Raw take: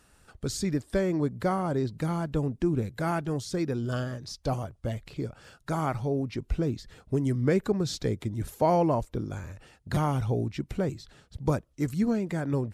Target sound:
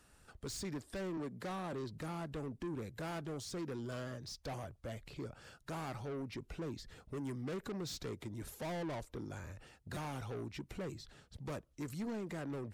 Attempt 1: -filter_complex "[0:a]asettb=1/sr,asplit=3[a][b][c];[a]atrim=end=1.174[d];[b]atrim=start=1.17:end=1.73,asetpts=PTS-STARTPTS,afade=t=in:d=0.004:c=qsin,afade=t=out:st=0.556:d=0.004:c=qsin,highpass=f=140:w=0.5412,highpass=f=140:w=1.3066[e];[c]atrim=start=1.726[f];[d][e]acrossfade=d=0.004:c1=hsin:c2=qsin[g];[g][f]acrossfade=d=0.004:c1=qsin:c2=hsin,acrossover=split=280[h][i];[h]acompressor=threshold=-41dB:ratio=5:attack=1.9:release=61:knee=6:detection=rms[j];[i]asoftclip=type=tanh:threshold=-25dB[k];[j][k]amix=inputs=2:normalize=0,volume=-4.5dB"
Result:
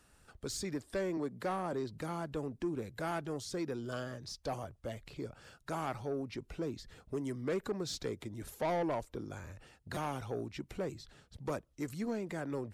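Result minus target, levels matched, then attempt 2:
soft clip: distortion -7 dB
-filter_complex "[0:a]asettb=1/sr,asplit=3[a][b][c];[a]atrim=end=1.174[d];[b]atrim=start=1.17:end=1.73,asetpts=PTS-STARTPTS,afade=t=in:d=0.004:c=qsin,afade=t=out:st=0.556:d=0.004:c=qsin,highpass=f=140:w=0.5412,highpass=f=140:w=1.3066[e];[c]atrim=start=1.726[f];[d][e]acrossfade=d=0.004:c1=hsin:c2=qsin[g];[g][f]acrossfade=d=0.004:c1=qsin:c2=hsin,acrossover=split=280[h][i];[h]acompressor=threshold=-41dB:ratio=5:attack=1.9:release=61:knee=6:detection=rms[j];[i]asoftclip=type=tanh:threshold=-36.5dB[k];[j][k]amix=inputs=2:normalize=0,volume=-4.5dB"

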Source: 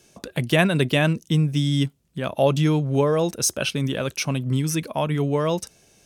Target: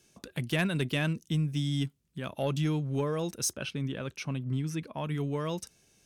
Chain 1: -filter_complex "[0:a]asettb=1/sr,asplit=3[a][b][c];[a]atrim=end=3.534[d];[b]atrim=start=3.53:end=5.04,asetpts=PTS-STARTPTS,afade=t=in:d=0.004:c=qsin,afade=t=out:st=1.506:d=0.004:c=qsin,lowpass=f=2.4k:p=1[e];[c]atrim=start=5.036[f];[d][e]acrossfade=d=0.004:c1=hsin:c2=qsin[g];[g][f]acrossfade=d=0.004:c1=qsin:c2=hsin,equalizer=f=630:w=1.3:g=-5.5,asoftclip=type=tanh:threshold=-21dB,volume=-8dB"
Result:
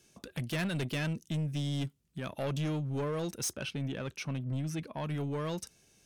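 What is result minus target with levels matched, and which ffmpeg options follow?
soft clip: distortion +15 dB
-filter_complex "[0:a]asettb=1/sr,asplit=3[a][b][c];[a]atrim=end=3.534[d];[b]atrim=start=3.53:end=5.04,asetpts=PTS-STARTPTS,afade=t=in:d=0.004:c=qsin,afade=t=out:st=1.506:d=0.004:c=qsin,lowpass=f=2.4k:p=1[e];[c]atrim=start=5.036[f];[d][e]acrossfade=d=0.004:c1=hsin:c2=qsin[g];[g][f]acrossfade=d=0.004:c1=qsin:c2=hsin,equalizer=f=630:w=1.3:g=-5.5,asoftclip=type=tanh:threshold=-9dB,volume=-8dB"

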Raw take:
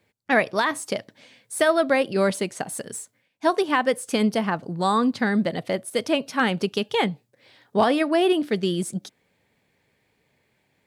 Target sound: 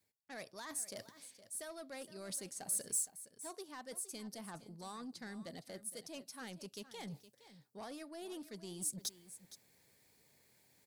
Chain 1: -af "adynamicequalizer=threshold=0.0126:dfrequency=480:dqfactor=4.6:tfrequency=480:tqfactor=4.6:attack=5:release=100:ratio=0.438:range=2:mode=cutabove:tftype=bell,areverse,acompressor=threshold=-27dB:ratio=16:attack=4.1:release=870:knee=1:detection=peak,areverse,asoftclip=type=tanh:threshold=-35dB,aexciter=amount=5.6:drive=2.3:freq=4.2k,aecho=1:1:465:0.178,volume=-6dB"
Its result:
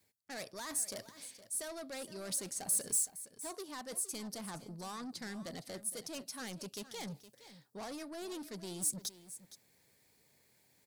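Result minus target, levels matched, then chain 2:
compressor: peak gain reduction -7 dB
-af "adynamicequalizer=threshold=0.0126:dfrequency=480:dqfactor=4.6:tfrequency=480:tqfactor=4.6:attack=5:release=100:ratio=0.438:range=2:mode=cutabove:tftype=bell,areverse,acompressor=threshold=-34.5dB:ratio=16:attack=4.1:release=870:knee=1:detection=peak,areverse,asoftclip=type=tanh:threshold=-35dB,aexciter=amount=5.6:drive=2.3:freq=4.2k,aecho=1:1:465:0.178,volume=-6dB"

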